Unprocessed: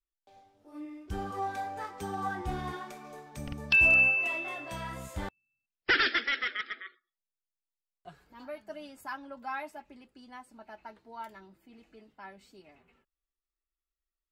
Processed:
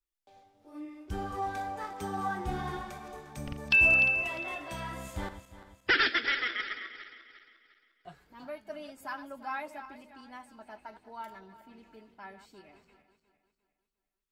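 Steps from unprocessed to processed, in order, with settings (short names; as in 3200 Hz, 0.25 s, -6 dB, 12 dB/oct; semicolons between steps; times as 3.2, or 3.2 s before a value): regenerating reverse delay 0.176 s, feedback 61%, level -11.5 dB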